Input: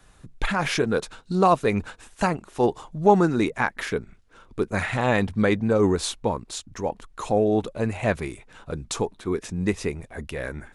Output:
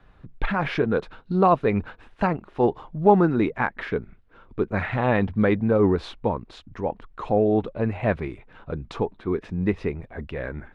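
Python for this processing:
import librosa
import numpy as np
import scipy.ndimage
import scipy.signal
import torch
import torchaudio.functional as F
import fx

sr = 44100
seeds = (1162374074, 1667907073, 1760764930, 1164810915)

y = fx.air_absorb(x, sr, metres=370.0)
y = y * 10.0 ** (1.5 / 20.0)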